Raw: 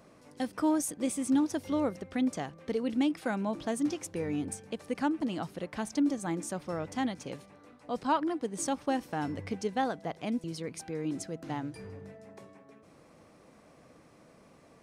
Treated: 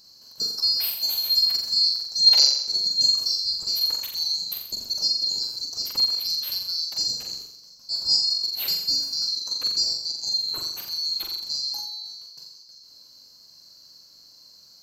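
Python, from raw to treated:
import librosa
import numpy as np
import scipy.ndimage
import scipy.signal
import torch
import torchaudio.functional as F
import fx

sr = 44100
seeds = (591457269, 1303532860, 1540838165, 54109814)

y = fx.band_swap(x, sr, width_hz=4000)
y = fx.peak_eq(y, sr, hz=2000.0, db=-12.5, octaves=1.4)
y = fx.spec_box(y, sr, start_s=2.27, length_s=0.36, low_hz=370.0, high_hz=7100.0, gain_db=12)
y = fx.low_shelf(y, sr, hz=460.0, db=6.5, at=(4.23, 4.9))
y = fx.room_flutter(y, sr, wall_m=7.4, rt60_s=0.7)
y = fx.sustainer(y, sr, db_per_s=31.0, at=(11.51, 12.3))
y = y * 10.0 ** (8.0 / 20.0)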